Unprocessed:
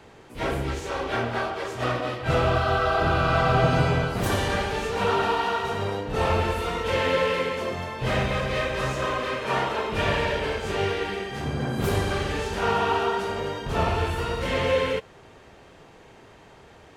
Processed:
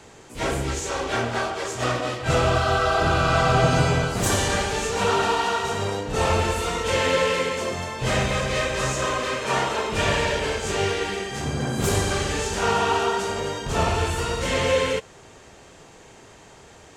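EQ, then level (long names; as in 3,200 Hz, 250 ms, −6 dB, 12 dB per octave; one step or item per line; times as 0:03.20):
parametric band 7,300 Hz +13 dB 1 octave
+1.5 dB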